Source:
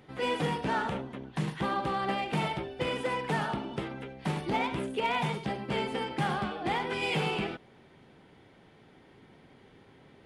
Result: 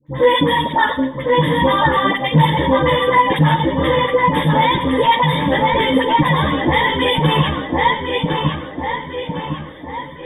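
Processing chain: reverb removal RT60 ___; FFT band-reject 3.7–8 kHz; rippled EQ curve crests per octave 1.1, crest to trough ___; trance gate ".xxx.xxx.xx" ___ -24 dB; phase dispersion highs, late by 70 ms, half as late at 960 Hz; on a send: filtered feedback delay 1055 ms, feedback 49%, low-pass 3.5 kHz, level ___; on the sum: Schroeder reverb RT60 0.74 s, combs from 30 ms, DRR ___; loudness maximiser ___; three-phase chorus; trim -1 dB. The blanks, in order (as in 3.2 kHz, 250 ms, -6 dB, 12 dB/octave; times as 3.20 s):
1 s, 17 dB, 186 bpm, -4 dB, 11.5 dB, +21.5 dB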